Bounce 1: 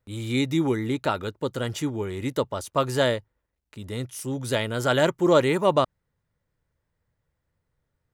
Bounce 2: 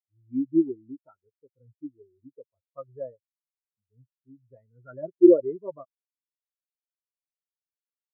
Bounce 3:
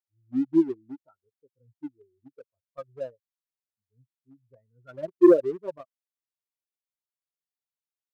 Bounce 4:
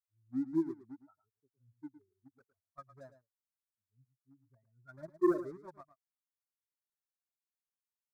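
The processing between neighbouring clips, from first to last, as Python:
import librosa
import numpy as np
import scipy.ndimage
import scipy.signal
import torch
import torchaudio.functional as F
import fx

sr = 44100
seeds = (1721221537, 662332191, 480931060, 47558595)

y1 = scipy.signal.sosfilt(scipy.signal.butter(6, 2700.0, 'lowpass', fs=sr, output='sos'), x)
y1 = fx.notch(y1, sr, hz=590.0, q=12.0)
y1 = fx.spectral_expand(y1, sr, expansion=4.0)
y1 = y1 * librosa.db_to_amplitude(4.0)
y2 = fx.leveller(y1, sr, passes=1)
y2 = y2 * librosa.db_to_amplitude(-2.5)
y3 = fx.vibrato(y2, sr, rate_hz=3.3, depth_cents=29.0)
y3 = fx.fixed_phaser(y3, sr, hz=1200.0, stages=4)
y3 = y3 + 10.0 ** (-13.0 / 20.0) * np.pad(y3, (int(110 * sr / 1000.0), 0))[:len(y3)]
y3 = y3 * librosa.db_to_amplitude(-5.0)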